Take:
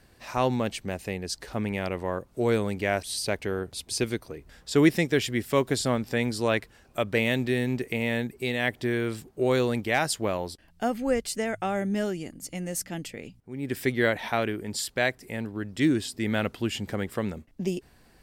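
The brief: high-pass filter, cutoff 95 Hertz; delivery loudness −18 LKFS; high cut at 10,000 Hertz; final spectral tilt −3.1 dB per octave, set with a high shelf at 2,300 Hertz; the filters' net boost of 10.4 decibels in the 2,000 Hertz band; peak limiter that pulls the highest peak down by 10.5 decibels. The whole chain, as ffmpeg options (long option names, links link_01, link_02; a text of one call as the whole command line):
ffmpeg -i in.wav -af "highpass=95,lowpass=10000,equalizer=frequency=2000:width_type=o:gain=8.5,highshelf=frequency=2300:gain=7.5,volume=8dB,alimiter=limit=-3dB:level=0:latency=1" out.wav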